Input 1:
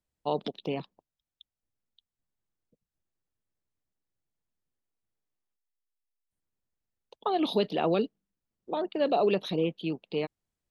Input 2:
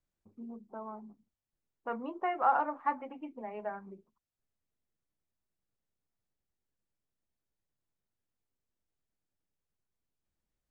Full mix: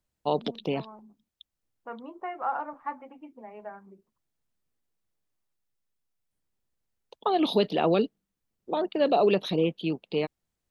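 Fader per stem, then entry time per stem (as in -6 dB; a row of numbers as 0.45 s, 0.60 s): +3.0 dB, -3.0 dB; 0.00 s, 0.00 s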